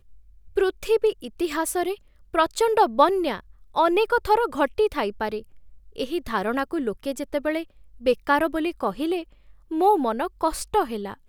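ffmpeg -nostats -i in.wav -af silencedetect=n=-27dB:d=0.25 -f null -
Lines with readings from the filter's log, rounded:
silence_start: 0.00
silence_end: 0.57 | silence_duration: 0.57
silence_start: 1.94
silence_end: 2.35 | silence_duration: 0.41
silence_start: 3.37
silence_end: 3.76 | silence_duration: 0.39
silence_start: 5.39
silence_end: 5.98 | silence_duration: 0.59
silence_start: 7.62
silence_end: 8.06 | silence_duration: 0.44
silence_start: 9.21
silence_end: 9.72 | silence_duration: 0.51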